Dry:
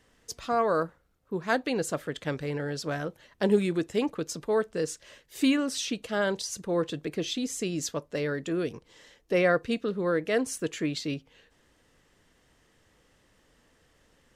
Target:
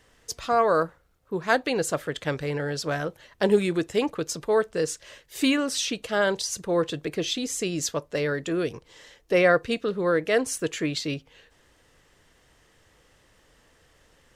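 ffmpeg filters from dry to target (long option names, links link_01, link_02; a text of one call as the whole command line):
ffmpeg -i in.wav -af "equalizer=frequency=230:width=1.4:gain=-5.5,volume=5dB" out.wav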